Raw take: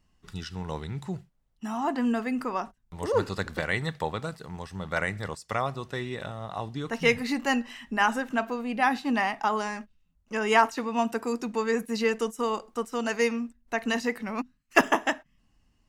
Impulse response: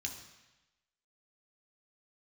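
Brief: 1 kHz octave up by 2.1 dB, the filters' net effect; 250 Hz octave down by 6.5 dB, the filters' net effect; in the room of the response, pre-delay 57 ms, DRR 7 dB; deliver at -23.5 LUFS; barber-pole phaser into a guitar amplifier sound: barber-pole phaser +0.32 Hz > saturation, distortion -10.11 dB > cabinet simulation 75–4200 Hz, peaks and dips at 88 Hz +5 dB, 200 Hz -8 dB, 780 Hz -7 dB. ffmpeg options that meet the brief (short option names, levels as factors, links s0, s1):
-filter_complex "[0:a]equalizer=f=250:t=o:g=-4.5,equalizer=f=1000:t=o:g=6,asplit=2[s0][s1];[1:a]atrim=start_sample=2205,adelay=57[s2];[s1][s2]afir=irnorm=-1:irlink=0,volume=0.473[s3];[s0][s3]amix=inputs=2:normalize=0,asplit=2[s4][s5];[s5]afreqshift=0.32[s6];[s4][s6]amix=inputs=2:normalize=1,asoftclip=threshold=0.119,highpass=75,equalizer=f=88:t=q:w=4:g=5,equalizer=f=200:t=q:w=4:g=-8,equalizer=f=780:t=q:w=4:g=-7,lowpass=f=4200:w=0.5412,lowpass=f=4200:w=1.3066,volume=2.99"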